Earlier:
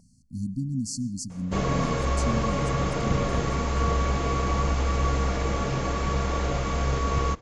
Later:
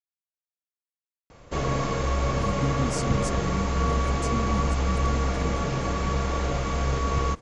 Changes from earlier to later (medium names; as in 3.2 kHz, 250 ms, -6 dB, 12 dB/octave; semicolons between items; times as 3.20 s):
speech: entry +2.05 s; reverb: off